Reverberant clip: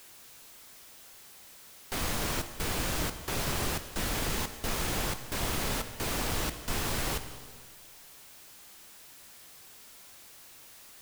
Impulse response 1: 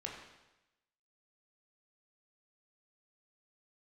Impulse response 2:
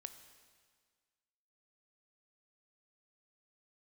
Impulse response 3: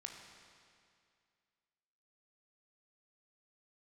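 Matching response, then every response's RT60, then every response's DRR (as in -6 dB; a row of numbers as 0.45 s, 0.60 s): 2; 1.0 s, 1.7 s, 2.3 s; -1.5 dB, 9.0 dB, 2.0 dB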